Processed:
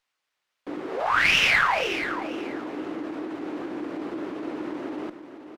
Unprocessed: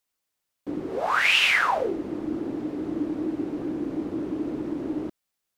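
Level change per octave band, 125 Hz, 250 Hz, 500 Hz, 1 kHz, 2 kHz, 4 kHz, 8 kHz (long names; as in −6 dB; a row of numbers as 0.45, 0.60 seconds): −3.5, −4.0, −1.0, +1.0, +1.5, −0.5, +0.5 decibels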